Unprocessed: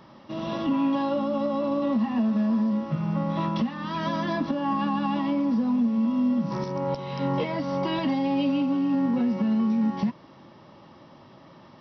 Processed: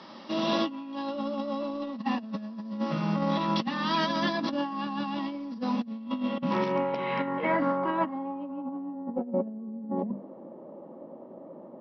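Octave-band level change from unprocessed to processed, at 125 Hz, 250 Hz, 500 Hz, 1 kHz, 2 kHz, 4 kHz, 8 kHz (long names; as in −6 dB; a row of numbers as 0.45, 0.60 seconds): −6.5 dB, −7.0 dB, −1.5 dB, −0.5 dB, +2.5 dB, +3.0 dB, can't be measured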